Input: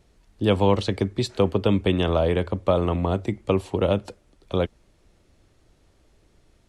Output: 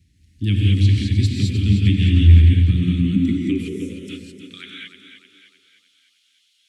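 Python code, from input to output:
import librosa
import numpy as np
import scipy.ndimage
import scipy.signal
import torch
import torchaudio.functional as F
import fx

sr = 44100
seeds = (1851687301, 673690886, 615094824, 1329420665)

y = scipy.signal.sosfilt(scipy.signal.ellip(3, 1.0, 70, [280.0, 2000.0], 'bandstop', fs=sr, output='sos'), x)
y = fx.rev_gated(y, sr, seeds[0], gate_ms=240, shape='rising', drr_db=-2.0)
y = fx.spec_box(y, sr, start_s=3.69, length_s=0.4, low_hz=1100.0, high_hz=5000.0, gain_db=-15)
y = fx.filter_sweep_highpass(y, sr, from_hz=82.0, to_hz=3200.0, start_s=2.42, end_s=5.39, q=4.2)
y = fx.echo_feedback(y, sr, ms=306, feedback_pct=50, wet_db=-9)
y = y * 10.0 ** (-1.0 / 20.0)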